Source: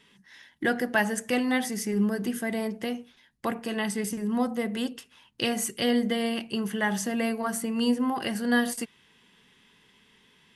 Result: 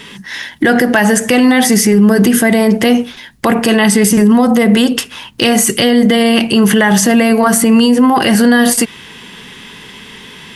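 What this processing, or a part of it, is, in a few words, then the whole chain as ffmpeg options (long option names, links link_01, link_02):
loud club master: -af "acompressor=threshold=-27dB:ratio=2.5,asoftclip=type=hard:threshold=-19dB,alimiter=level_in=28dB:limit=-1dB:release=50:level=0:latency=1,volume=-1dB"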